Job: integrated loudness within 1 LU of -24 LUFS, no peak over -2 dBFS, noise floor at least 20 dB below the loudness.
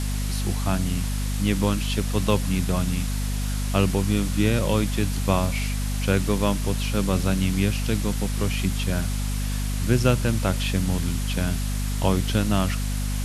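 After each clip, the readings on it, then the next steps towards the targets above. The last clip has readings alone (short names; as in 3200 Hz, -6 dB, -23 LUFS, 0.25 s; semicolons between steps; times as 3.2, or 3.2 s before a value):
hum 50 Hz; harmonics up to 250 Hz; hum level -23 dBFS; noise floor -26 dBFS; noise floor target -45 dBFS; loudness -24.5 LUFS; peak -5.0 dBFS; loudness target -24.0 LUFS
-> notches 50/100/150/200/250 Hz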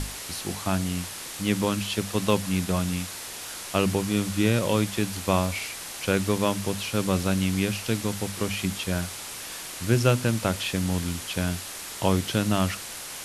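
hum none; noise floor -38 dBFS; noise floor target -47 dBFS
-> denoiser 9 dB, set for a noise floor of -38 dBFS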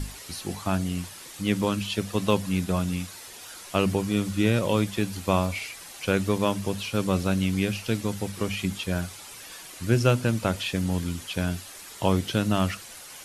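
noise floor -44 dBFS; noise floor target -47 dBFS
-> denoiser 6 dB, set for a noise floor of -44 dBFS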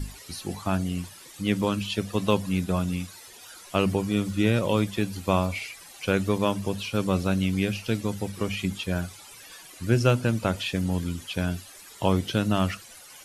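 noise floor -47 dBFS; loudness -27.0 LUFS; peak -6.5 dBFS; loudness target -24.0 LUFS
-> gain +3 dB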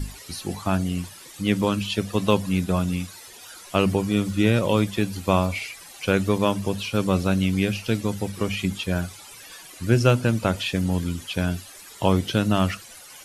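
loudness -24.0 LUFS; peak -3.5 dBFS; noise floor -44 dBFS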